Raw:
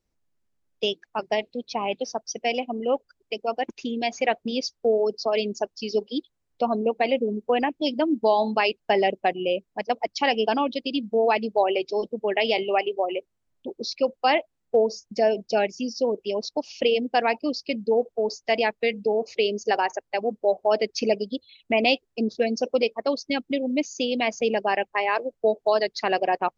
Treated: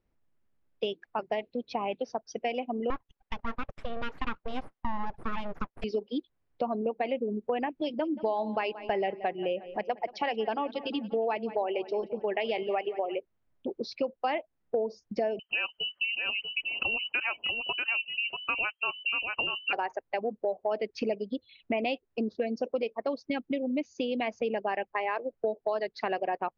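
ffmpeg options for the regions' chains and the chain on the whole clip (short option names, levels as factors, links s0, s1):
-filter_complex "[0:a]asettb=1/sr,asplit=3[s0][s1][s2];[s0]atrim=end=2.904[s3];[s1]atrim=start=2.9:end=5.84,asetpts=PTS-STARTPTS,afade=t=in:d=0.004:c=qsin,afade=t=out:st=2.936:d=0.004:c=qsin,acrossover=split=2900[s4][s5];[s5]acompressor=threshold=0.0126:ratio=4:attack=1:release=60[s6];[s4][s6]amix=inputs=2:normalize=0,highpass=f=120:w=0.5412,highpass=f=120:w=1.3066,aeval=exprs='abs(val(0))':c=same[s7];[s2]atrim=start=5.836[s8];[s3][s7]acrossfade=d=0.004:c1=hsin:c2=qsin[s9];[s9][s8]acrossfade=d=0.004:c1=qsin:c2=hsin,asettb=1/sr,asplit=3[s10][s11][s12];[s10]atrim=end=7.664[s13];[s11]atrim=start=7.66:end=13.15,asetpts=PTS-STARTPTS,afade=t=in:d=0.004:c=qsin,afade=t=out:st=5.486:d=0.004:c=qsin,bandreject=f=260:w=5.9,acompressor=mode=upward:threshold=0.0251:ratio=2.5:attack=3.2:release=140:knee=2.83:detection=peak,asplit=2[s14][s15];[s15]adelay=178,lowpass=f=4000:p=1,volume=0.112,asplit=2[s16][s17];[s17]adelay=178,lowpass=f=4000:p=1,volume=0.55,asplit=2[s18][s19];[s19]adelay=178,lowpass=f=4000:p=1,volume=0.55,asplit=2[s20][s21];[s21]adelay=178,lowpass=f=4000:p=1,volume=0.55,asplit=2[s22][s23];[s23]adelay=178,lowpass=f=4000:p=1,volume=0.55[s24];[s14][s16][s18][s20][s22][s24]amix=inputs=6:normalize=0,atrim=end_sample=242109[s25];[s12]atrim=start=13.146[s26];[s13][s25]acrossfade=d=0.004:c1=hsin:c2=qsin[s27];[s27][s26]acrossfade=d=0.004:c1=qsin:c2=hsin,asettb=1/sr,asplit=3[s28][s29][s30];[s28]atrim=end=15.394[s31];[s29]atrim=start=15.39:end=19.73,asetpts=PTS-STARTPTS,afade=t=in:d=0.004:c=qsin,afade=t=out:st=4.336:d=0.004:c=qsin,aecho=1:1:639:0.473,atrim=end_sample=191394,lowpass=f=2700:t=q:w=0.5098,lowpass=f=2700:t=q:w=0.6013,lowpass=f=2700:t=q:w=0.9,lowpass=f=2700:t=q:w=2.563,afreqshift=-3200[s32];[s30]atrim=start=19.726[s33];[s31][s32]acrossfade=d=0.004:c1=hsin:c2=qsin[s34];[s34][s33]acrossfade=d=0.004:c1=qsin:c2=hsin,lowpass=2500,acompressor=threshold=0.0251:ratio=3,volume=1.26"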